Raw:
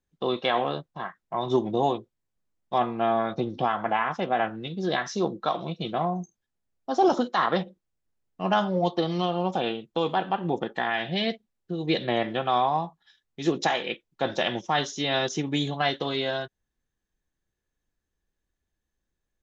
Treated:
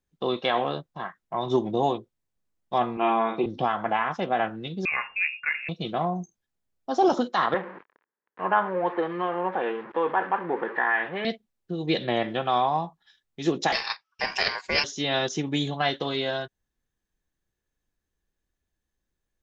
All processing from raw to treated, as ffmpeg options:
-filter_complex "[0:a]asettb=1/sr,asplit=3[a][b][c];[a]atrim=end=2.974[d];[b]atrim=start=2.97:end=3.46,asetpts=PTS-STARTPTS,afade=t=in:d=0.004:c=qsin,afade=t=out:st=0.486:d=0.004:c=qsin,highpass=240,equalizer=f=380:t=q:w=4:g=6,equalizer=f=580:t=q:w=4:g=-6,equalizer=f=1k:t=q:w=4:g=9,equalizer=f=1.6k:t=q:w=4:g=-6,equalizer=f=2.5k:t=q:w=4:g=10,lowpass=f=3.4k:w=0.5412,lowpass=f=3.4k:w=1.3066,asplit=2[e][f];[f]adelay=49,volume=-5dB[g];[e][g]amix=inputs=2:normalize=0,atrim=end_sample=21609[h];[c]atrim=start=3.456[i];[d][h]acrossfade=d=0.004:c1=hsin:c2=qsin[j];[j][i]acrossfade=d=0.004:c1=qsin:c2=hsin,asettb=1/sr,asplit=3[k][l][m];[k]atrim=end=4.854[n];[l]atrim=start=4.85:end=5.69,asetpts=PTS-STARTPTS,afade=t=in:d=0.004:c=qsin,afade=t=out:st=0.836:d=0.004:c=qsin,aeval=exprs='if(lt(val(0),0),0.708*val(0),val(0))':c=same,lowpass=f=2.4k:t=q:w=0.5098,lowpass=f=2.4k:t=q:w=0.6013,lowpass=f=2.4k:t=q:w=0.9,lowpass=f=2.4k:t=q:w=2.563,afreqshift=-2800[o];[m]atrim=start=5.686[p];[n][o]acrossfade=d=0.004:c1=hsin:c2=qsin[q];[q][p]acrossfade=d=0.004:c1=qsin:c2=hsin,asettb=1/sr,asplit=3[r][s][t];[r]atrim=end=7.544[u];[s]atrim=start=7.54:end=11.25,asetpts=PTS-STARTPTS,afade=t=in:d=0.004:c=qsin,afade=t=out:st=3.706:d=0.004:c=qsin,aeval=exprs='val(0)+0.5*0.0251*sgn(val(0))':c=same,highpass=370,equalizer=f=440:t=q:w=4:g=3,equalizer=f=680:t=q:w=4:g=-6,equalizer=f=1k:t=q:w=4:g=6,equalizer=f=1.7k:t=q:w=4:g=6,lowpass=f=2.1k:w=0.5412,lowpass=f=2.1k:w=1.3066[v];[t]atrim=start=11.246[w];[u][v]acrossfade=d=0.004:c1=hsin:c2=qsin[x];[x][w]acrossfade=d=0.004:c1=qsin:c2=hsin,asettb=1/sr,asplit=3[y][z][aa];[y]atrim=end=13.724[ab];[z]atrim=start=13.72:end=14.84,asetpts=PTS-STARTPTS,afade=t=in:d=0.004:c=qsin,afade=t=out:st=1.116:d=0.004:c=qsin,lowpass=f=4.2k:t=q:w=6.6,aeval=exprs='val(0)*sin(2*PI*1300*n/s)':c=same[ac];[aa]atrim=start=14.836[ad];[ab][ac]acrossfade=d=0.004:c1=hsin:c2=qsin[ae];[ae][ad]acrossfade=d=0.004:c1=qsin:c2=hsin"

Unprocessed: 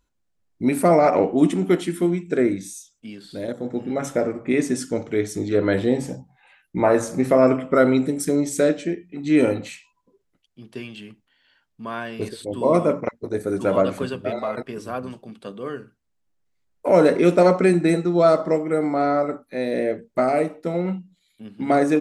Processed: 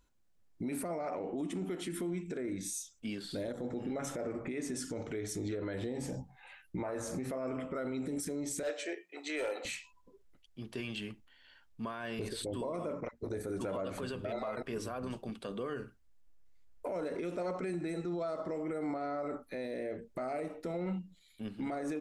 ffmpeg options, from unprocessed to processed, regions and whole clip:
-filter_complex "[0:a]asettb=1/sr,asplit=3[a][b][c];[a]atrim=end=8.634[d];[b]atrim=start=8.63:end=9.65,asetpts=PTS-STARTPTS,afade=t=in:d=0.004:c=qsin,afade=t=out:st=1.016:d=0.004:c=qsin,highpass=f=480:w=0.5412,highpass=f=480:w=1.3066,volume=18.5dB,asoftclip=hard,volume=-18.5dB[e];[c]atrim=start=9.646[f];[d][e]acrossfade=d=0.004:c1=hsin:c2=qsin[g];[g][f]acrossfade=d=0.004:c1=qsin:c2=hsin,asubboost=boost=4:cutoff=68,acompressor=threshold=-28dB:ratio=6,alimiter=level_in=5.5dB:limit=-24dB:level=0:latency=1:release=50,volume=-5.5dB"

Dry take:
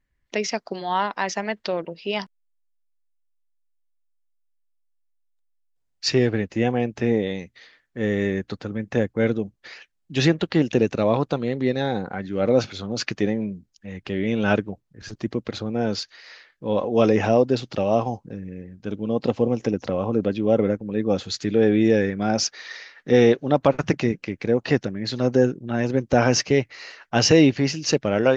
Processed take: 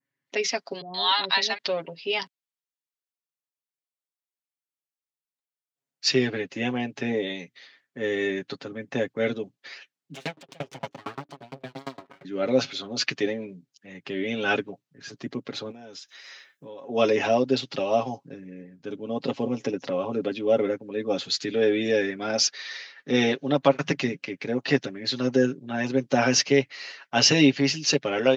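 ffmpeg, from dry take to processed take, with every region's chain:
-filter_complex "[0:a]asettb=1/sr,asplit=3[a][b][c];[a]atrim=end=0.814[d];[b]atrim=start=0.81:end=1.58,asetpts=PTS-STARTPTS,afade=t=in:d=0.004:c=qsin,afade=t=out:st=0.766:d=0.004:c=qsin,lowpass=f=4k:t=q:w=7.9,bandreject=f=520:w=7,acrossover=split=610[e][f];[f]adelay=130[g];[e][g]amix=inputs=2:normalize=0,atrim=end_sample=33957[h];[c]atrim=start=1.576[i];[d][h]acrossfade=d=0.004:c1=hsin:c2=qsin[j];[j][i]acrossfade=d=0.004:c1=qsin:c2=hsin,asettb=1/sr,asplit=3[k][l][m];[k]atrim=end=10.144[n];[l]atrim=start=10.14:end=12.25,asetpts=PTS-STARTPTS,afade=t=in:d=0.004:c=qsin,afade=t=out:st=2.106:d=0.004:c=qsin,bandreject=f=50:t=h:w=6,bandreject=f=100:t=h:w=6,bandreject=f=150:t=h:w=6,bandreject=f=200:t=h:w=6,bandreject=f=250:t=h:w=6,aeval=exprs='abs(val(0))':c=same,aeval=exprs='val(0)*pow(10,-35*if(lt(mod(8.7*n/s,1),2*abs(8.7)/1000),1-mod(8.7*n/s,1)/(2*abs(8.7)/1000),(mod(8.7*n/s,1)-2*abs(8.7)/1000)/(1-2*abs(8.7)/1000))/20)':c=same[o];[m]atrim=start=12.246[p];[n][o]acrossfade=d=0.004:c1=hsin:c2=qsin[q];[q][p]acrossfade=d=0.004:c1=qsin:c2=hsin,asettb=1/sr,asplit=3[r][s][t];[r]atrim=end=15.714[u];[s]atrim=start=15.71:end=16.89,asetpts=PTS-STARTPTS,afade=t=in:d=0.004:c=qsin,afade=t=out:st=1.176:d=0.004:c=qsin,aemphasis=mode=production:type=50kf,acompressor=threshold=-36dB:ratio=5:attack=3.2:release=140:knee=1:detection=peak,asuperstop=centerf=4500:order=4:qfactor=7.3[v];[t]atrim=start=16.886[w];[u][v]acrossfade=d=0.004:c1=hsin:c2=qsin[x];[x][w]acrossfade=d=0.004:c1=qsin:c2=hsin,highpass=f=150:w=0.5412,highpass=f=150:w=1.3066,aecho=1:1:7.3:0.75,adynamicequalizer=threshold=0.01:dfrequency=3500:dqfactor=0.73:tfrequency=3500:tqfactor=0.73:attack=5:release=100:ratio=0.375:range=4:mode=boostabove:tftype=bell,volume=-5.5dB"

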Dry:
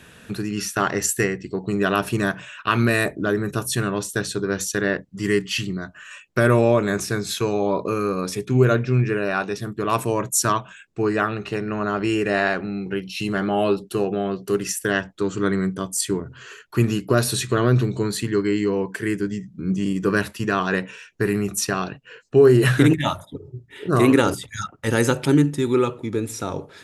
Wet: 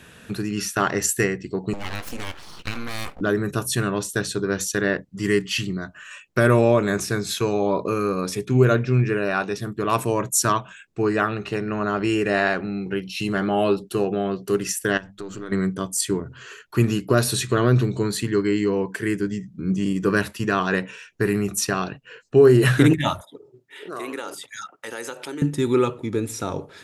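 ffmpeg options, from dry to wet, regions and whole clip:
-filter_complex "[0:a]asettb=1/sr,asplit=3[a][b][c];[a]atrim=end=1.734[d];[b]atrim=start=1.73:end=3.21,asetpts=PTS-STARTPTS,afade=t=in:d=0.004:c=qsin,afade=t=out:st=1.476:d=0.004:c=qsin,acompressor=threshold=-20dB:ratio=10:attack=3.2:release=140:knee=1:detection=peak,equalizer=f=260:t=o:w=0.76:g=-14.5,aeval=exprs='abs(val(0))':c=same[e];[c]atrim=start=3.206[f];[d][e]acrossfade=d=0.004:c1=hsin:c2=qsin[g];[g][f]acrossfade=d=0.004:c1=qsin:c2=hsin,asettb=1/sr,asplit=3[h][i][j];[h]atrim=end=14.974[k];[i]atrim=start=14.97:end=15.52,asetpts=PTS-STARTPTS,afade=t=in:d=0.004:c=qsin,afade=t=out:st=0.546:d=0.004:c=qsin,aeval=exprs='if(lt(val(0),0),0.708*val(0),val(0))':c=same,bandreject=f=50:t=h:w=6,bandreject=f=100:t=h:w=6,bandreject=f=150:t=h:w=6,bandreject=f=200:t=h:w=6,acompressor=threshold=-31dB:ratio=4:attack=3.2:release=140:knee=1:detection=peak[l];[j]atrim=start=15.516[m];[k][l]acrossfade=d=0.004:c1=hsin:c2=qsin[n];[n][m]acrossfade=d=0.004:c1=qsin:c2=hsin,asettb=1/sr,asplit=3[o][p][q];[o]atrim=end=23.214[r];[p]atrim=start=23.21:end=25.42,asetpts=PTS-STARTPTS,afade=t=in:d=0.004:c=qsin,afade=t=out:st=2.206:d=0.004:c=qsin,highpass=460,acompressor=threshold=-33dB:ratio=2.5:attack=3.2:release=140:knee=1:detection=peak[s];[q]atrim=start=25.416[t];[r][s]acrossfade=d=0.004:c1=hsin:c2=qsin[u];[u][t]acrossfade=d=0.004:c1=qsin:c2=hsin"

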